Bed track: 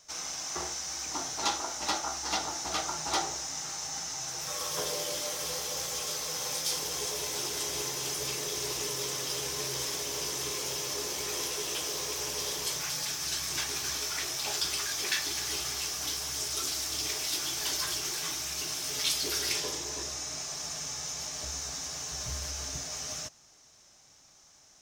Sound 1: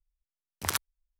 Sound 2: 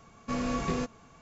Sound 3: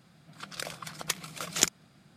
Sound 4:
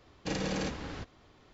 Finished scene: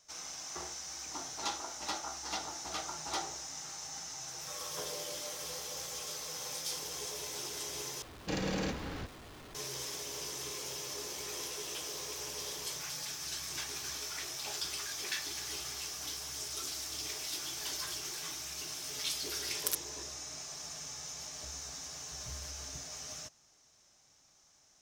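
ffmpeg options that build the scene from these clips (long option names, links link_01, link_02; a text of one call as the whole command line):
ffmpeg -i bed.wav -i cue0.wav -i cue1.wav -i cue2.wav -i cue3.wav -filter_complex "[0:a]volume=-7dB[link_01];[4:a]aeval=exprs='val(0)+0.5*0.00531*sgn(val(0))':channel_layout=same[link_02];[1:a]aderivative[link_03];[link_01]asplit=2[link_04][link_05];[link_04]atrim=end=8.024[link_06];[link_02]atrim=end=1.53,asetpts=PTS-STARTPTS,volume=-2dB[link_07];[link_05]atrim=start=9.546[link_08];[link_03]atrim=end=1.19,asetpts=PTS-STARTPTS,volume=-3.5dB,afade=type=in:duration=0.004:curve=hsin,afade=type=out:start_time=1.186:duration=0.004:curve=hsin,adelay=18980[link_09];[link_06][link_07]acrossfade=duration=0.004:curve1=hsin:curve2=hsin[link_10];[link_10][link_08]acrossfade=duration=0.004:curve1=hsin:curve2=hsin[link_11];[link_11][link_09]amix=inputs=2:normalize=0" out.wav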